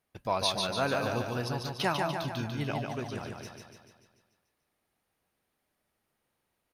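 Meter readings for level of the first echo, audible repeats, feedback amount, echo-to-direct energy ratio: -4.0 dB, 7, 56%, -2.5 dB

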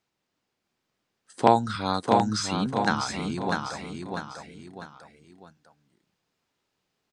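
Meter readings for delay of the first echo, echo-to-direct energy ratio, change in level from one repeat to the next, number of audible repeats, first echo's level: 648 ms, -4.0 dB, -8.0 dB, 3, -4.5 dB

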